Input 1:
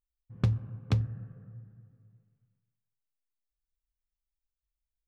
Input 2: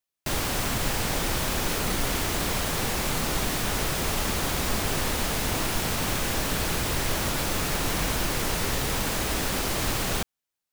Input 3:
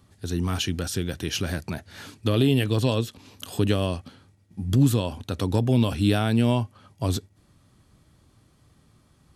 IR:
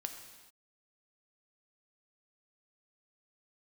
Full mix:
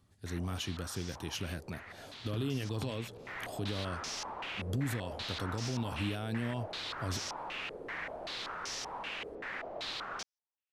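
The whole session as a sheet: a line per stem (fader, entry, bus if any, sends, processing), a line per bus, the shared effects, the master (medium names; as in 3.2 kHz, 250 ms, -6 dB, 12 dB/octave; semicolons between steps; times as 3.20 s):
-7.0 dB, 1.90 s, no send, none
2.96 s -22.5 dB -> 3.44 s -13 dB, 0.00 s, no send, bass shelf 300 Hz -10.5 dB; step-sequenced low-pass 5.2 Hz 460–5600 Hz
-11.0 dB, 0.00 s, no send, bass shelf 150 Hz +11 dB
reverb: none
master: bass shelf 190 Hz -9 dB; peak limiter -25.5 dBFS, peak gain reduction 6.5 dB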